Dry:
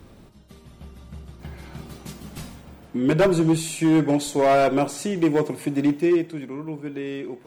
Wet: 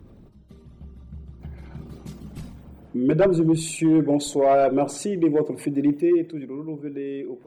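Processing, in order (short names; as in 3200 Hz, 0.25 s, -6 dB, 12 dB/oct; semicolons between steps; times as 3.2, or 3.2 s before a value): formant sharpening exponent 1.5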